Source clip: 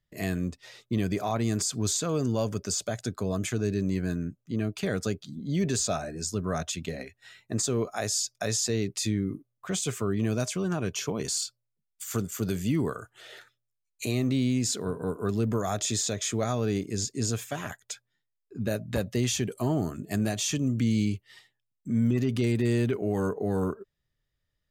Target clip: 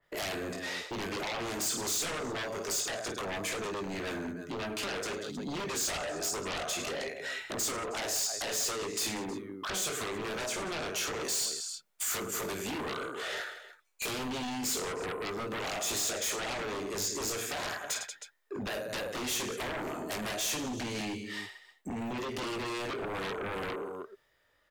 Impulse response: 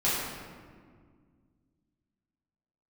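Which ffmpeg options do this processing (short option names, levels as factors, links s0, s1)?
-filter_complex "[0:a]acrossover=split=370 2200:gain=0.0794 1 0.224[s0][s1][s2];[s0][s1][s2]amix=inputs=3:normalize=0,aecho=1:1:20|52|103.2|185.1|316.2:0.631|0.398|0.251|0.158|0.1,acompressor=threshold=0.00282:ratio=2.5,aeval=exprs='0.0224*sin(PI/2*5.01*val(0)/0.0224)':c=same,adynamicequalizer=threshold=0.00251:dfrequency=3000:dqfactor=0.7:tfrequency=3000:tqfactor=0.7:attack=5:release=100:ratio=0.375:range=3:mode=boostabove:tftype=highshelf"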